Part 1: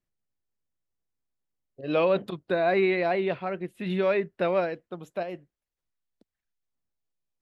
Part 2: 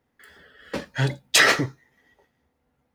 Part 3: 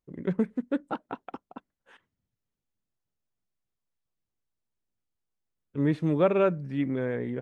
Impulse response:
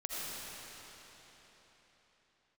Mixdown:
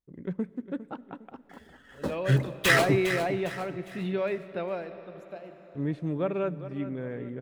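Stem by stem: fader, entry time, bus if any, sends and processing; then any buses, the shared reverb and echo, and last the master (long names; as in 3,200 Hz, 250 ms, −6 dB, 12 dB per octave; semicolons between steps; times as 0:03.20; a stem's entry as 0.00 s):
−5.0 dB, 0.15 s, send −16.5 dB, no echo send, automatic ducking −12 dB, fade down 1.85 s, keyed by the third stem
−3.0 dB, 1.30 s, send −23 dB, echo send −10.5 dB, running median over 9 samples; notch on a step sequencer 4.7 Hz 290–3,500 Hz
−8.0 dB, 0.00 s, send −22.5 dB, echo send −13 dB, no processing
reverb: on, RT60 4.3 s, pre-delay 40 ms
echo: repeating echo 406 ms, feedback 39%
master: low-shelf EQ 240 Hz +5 dB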